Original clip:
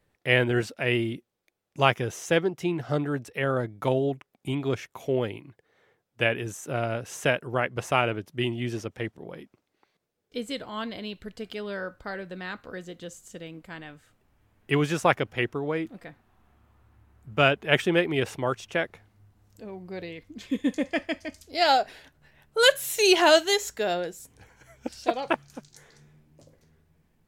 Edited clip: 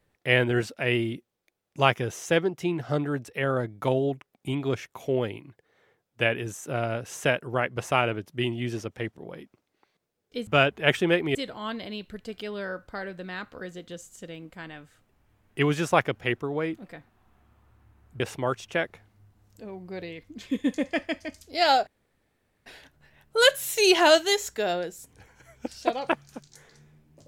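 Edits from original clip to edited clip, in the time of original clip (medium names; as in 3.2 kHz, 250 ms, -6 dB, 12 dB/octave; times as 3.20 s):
17.32–18.20 s: move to 10.47 s
21.87 s: insert room tone 0.79 s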